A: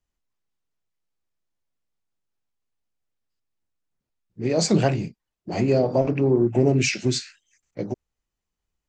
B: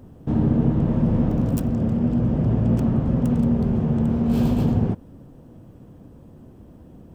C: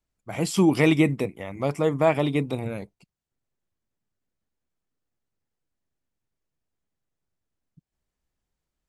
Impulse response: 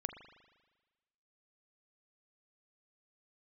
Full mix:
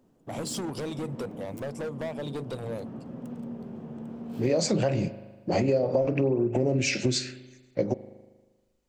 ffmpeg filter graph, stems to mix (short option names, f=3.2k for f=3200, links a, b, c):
-filter_complex "[0:a]alimiter=limit=-14.5dB:level=0:latency=1:release=109,equalizer=f=540:w=6.7:g=10,volume=-0.5dB,asplit=2[a][b];[b]volume=-4.5dB[c];[1:a]highpass=220,volume=-14.5dB[d];[2:a]equalizer=f=125:t=o:w=1:g=5,equalizer=f=250:t=o:w=1:g=-5,equalizer=f=500:t=o:w=1:g=9,equalizer=f=1k:t=o:w=1:g=6,equalizer=f=2k:t=o:w=1:g=-10,equalizer=f=4k:t=o:w=1:g=8,equalizer=f=8k:t=o:w=1:g=6,acompressor=threshold=-21dB:ratio=8,asoftclip=type=hard:threshold=-24.5dB,volume=-6dB,asplit=2[e][f];[f]apad=whole_len=314903[g];[d][g]sidechaincompress=threshold=-34dB:ratio=8:attack=16:release=250[h];[3:a]atrim=start_sample=2205[i];[c][i]afir=irnorm=-1:irlink=0[j];[a][h][e][j]amix=inputs=4:normalize=0,acompressor=threshold=-21dB:ratio=6"